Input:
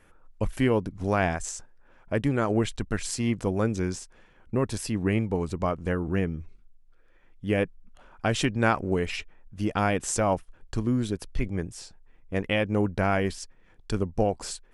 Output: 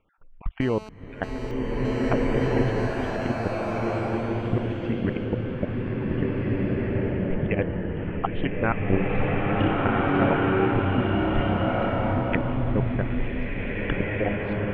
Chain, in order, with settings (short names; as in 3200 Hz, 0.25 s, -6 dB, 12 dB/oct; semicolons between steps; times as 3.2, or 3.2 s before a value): random spectral dropouts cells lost 34%; recorder AGC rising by 34 dB/s; steep low-pass 3100 Hz 48 dB/oct; level quantiser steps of 23 dB; 0.61–2.13 GSM buzz -42 dBFS; 8.86–10.32 flutter echo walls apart 5.4 m, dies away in 0.62 s; bloom reverb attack 1.89 s, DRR -6.5 dB